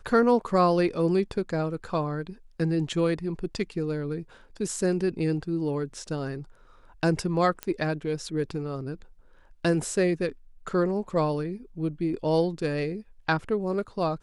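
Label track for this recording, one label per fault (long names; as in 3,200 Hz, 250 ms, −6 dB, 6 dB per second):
7.630000	7.630000	click −15 dBFS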